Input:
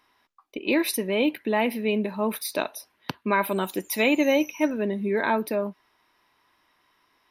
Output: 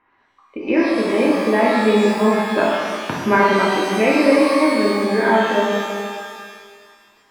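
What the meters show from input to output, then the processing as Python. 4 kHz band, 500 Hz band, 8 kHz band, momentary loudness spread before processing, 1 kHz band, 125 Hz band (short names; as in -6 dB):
+6.5 dB, +9.5 dB, +1.0 dB, 11 LU, +11.0 dB, +8.5 dB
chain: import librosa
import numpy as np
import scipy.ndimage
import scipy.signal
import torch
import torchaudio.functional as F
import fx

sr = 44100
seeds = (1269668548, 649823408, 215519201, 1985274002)

y = scipy.signal.sosfilt(scipy.signal.butter(4, 2200.0, 'lowpass', fs=sr, output='sos'), x)
y = fx.rider(y, sr, range_db=10, speed_s=2.0)
y = fx.rev_shimmer(y, sr, seeds[0], rt60_s=1.9, semitones=12, shimmer_db=-8, drr_db=-5.0)
y = F.gain(torch.from_numpy(y), 2.5).numpy()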